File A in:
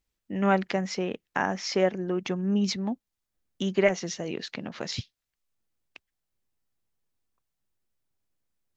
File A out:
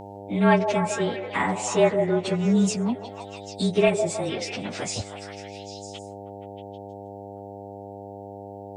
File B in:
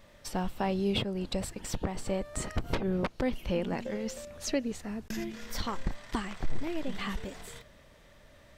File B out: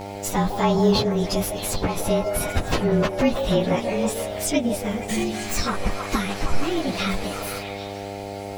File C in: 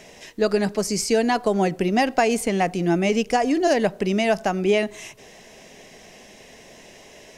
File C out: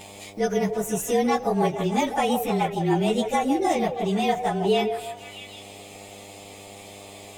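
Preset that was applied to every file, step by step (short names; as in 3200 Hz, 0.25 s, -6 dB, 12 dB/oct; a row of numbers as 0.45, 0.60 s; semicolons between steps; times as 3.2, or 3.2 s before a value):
inharmonic rescaling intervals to 109%; buzz 100 Hz, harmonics 9, -48 dBFS -2 dB/oct; on a send: delay with a stepping band-pass 0.158 s, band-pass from 590 Hz, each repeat 0.7 oct, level -4 dB; on the sum: mismatched tape noise reduction encoder only; match loudness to -24 LUFS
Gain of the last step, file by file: +5.5, +11.5, -1.0 dB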